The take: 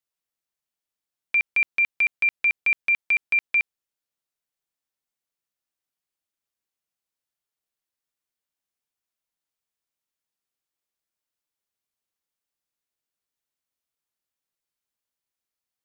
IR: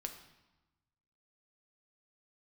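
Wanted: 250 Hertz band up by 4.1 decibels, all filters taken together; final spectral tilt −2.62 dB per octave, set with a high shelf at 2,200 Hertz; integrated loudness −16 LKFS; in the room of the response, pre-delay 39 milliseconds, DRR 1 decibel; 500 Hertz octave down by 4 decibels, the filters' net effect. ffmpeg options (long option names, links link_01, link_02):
-filter_complex "[0:a]equalizer=frequency=250:width_type=o:gain=7.5,equalizer=frequency=500:width_type=o:gain=-7,highshelf=frequency=2200:gain=-7.5,asplit=2[link_01][link_02];[1:a]atrim=start_sample=2205,adelay=39[link_03];[link_02][link_03]afir=irnorm=-1:irlink=0,volume=1dB[link_04];[link_01][link_04]amix=inputs=2:normalize=0,volume=8.5dB"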